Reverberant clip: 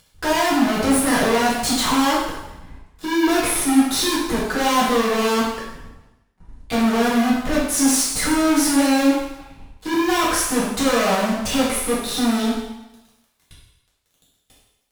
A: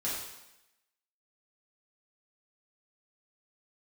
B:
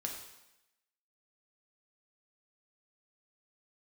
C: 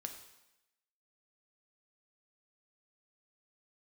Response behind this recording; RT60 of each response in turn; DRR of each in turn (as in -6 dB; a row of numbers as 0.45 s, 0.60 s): A; 0.90 s, 0.90 s, 0.90 s; -8.5 dB, 0.5 dB, 4.5 dB